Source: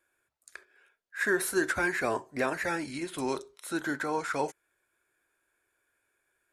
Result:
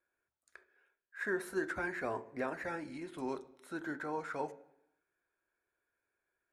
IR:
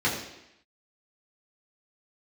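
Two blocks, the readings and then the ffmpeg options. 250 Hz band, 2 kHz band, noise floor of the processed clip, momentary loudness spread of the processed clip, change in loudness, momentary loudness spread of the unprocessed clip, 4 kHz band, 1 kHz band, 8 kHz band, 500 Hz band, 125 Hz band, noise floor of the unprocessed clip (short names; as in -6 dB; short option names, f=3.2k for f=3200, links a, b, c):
-7.5 dB, -9.5 dB, under -85 dBFS, 9 LU, -8.5 dB, 9 LU, -15.0 dB, -8.0 dB, -18.0 dB, -7.0 dB, -7.5 dB, -80 dBFS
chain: -filter_complex "[0:a]highshelf=f=3.3k:g=-12,asplit=2[a][b];[1:a]atrim=start_sample=2205,highshelf=f=3.9k:g=-6.5[c];[b][c]afir=irnorm=-1:irlink=0,volume=-24.5dB[d];[a][d]amix=inputs=2:normalize=0,volume=-7.5dB"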